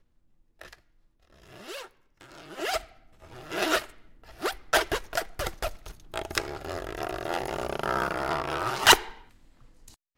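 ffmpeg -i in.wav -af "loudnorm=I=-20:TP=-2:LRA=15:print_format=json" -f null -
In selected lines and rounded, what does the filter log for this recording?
"input_i" : "-26.9",
"input_tp" : "-5.4",
"input_lra" : "7.8",
"input_thresh" : "-38.8",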